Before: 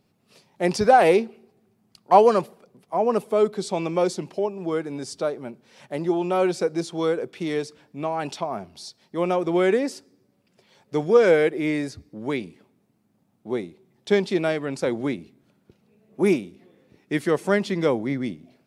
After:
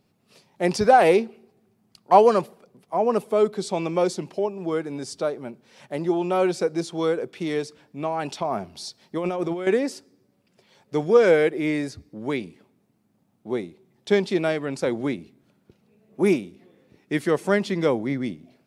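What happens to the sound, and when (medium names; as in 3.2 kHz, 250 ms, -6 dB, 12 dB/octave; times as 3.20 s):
8.41–9.67 s: compressor with a negative ratio -26 dBFS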